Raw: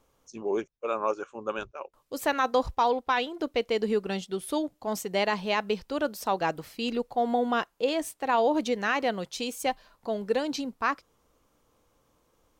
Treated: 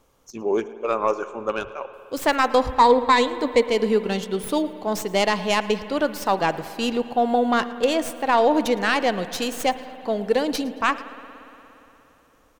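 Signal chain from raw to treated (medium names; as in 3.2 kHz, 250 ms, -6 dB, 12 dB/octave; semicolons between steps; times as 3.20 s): tracing distortion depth 0.066 ms; 2.79–3.67 s: rippled EQ curve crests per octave 1, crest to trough 11 dB; feedback delay 112 ms, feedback 38%, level -21.5 dB; spring tank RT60 3.3 s, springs 58 ms, chirp 65 ms, DRR 13.5 dB; trim +6 dB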